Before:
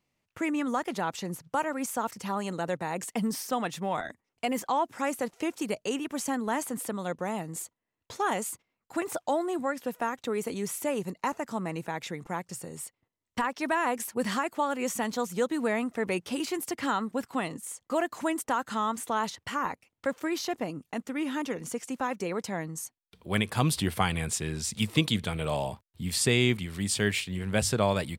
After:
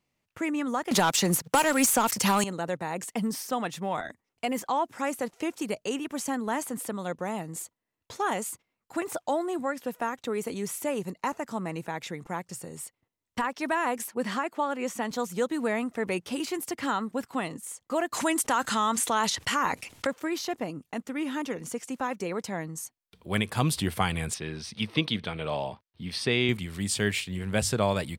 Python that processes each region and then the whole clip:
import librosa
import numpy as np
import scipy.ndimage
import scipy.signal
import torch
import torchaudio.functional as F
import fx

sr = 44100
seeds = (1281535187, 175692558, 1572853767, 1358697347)

y = fx.chain(x, sr, fx.high_shelf(hz=2600.0, db=10.5),
    fx.leveller(passes=2),
    fx.band_squash(depth_pct=70), at=(0.91, 2.44))
y = fx.chain(y, sr, fx.highpass(hz=170.0, slope=12),
    fx.high_shelf(hz=5800.0, db=-8.5), at=(14.08, 15.11))
y = fx.chain(y, sr, fx.lowpass(hz=12000.0, slope=12),
    fx.high_shelf(hz=2000.0, db=8.5),
    fx.env_flatten(amount_pct=50), at=(18.13, 20.07))
y = fx.chain(y, sr, fx.savgol(points=15),
    fx.low_shelf(hz=110.0, db=-11.5), at=(24.34, 26.49))